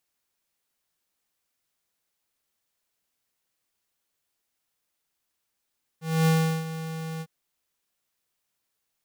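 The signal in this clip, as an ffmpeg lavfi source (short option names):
-f lavfi -i "aevalsrc='0.106*(2*lt(mod(161*t,1),0.5)-1)':d=1.253:s=44100,afade=t=in:d=0.258,afade=t=out:st=0.258:d=0.368:silence=0.2,afade=t=out:st=1.2:d=0.053"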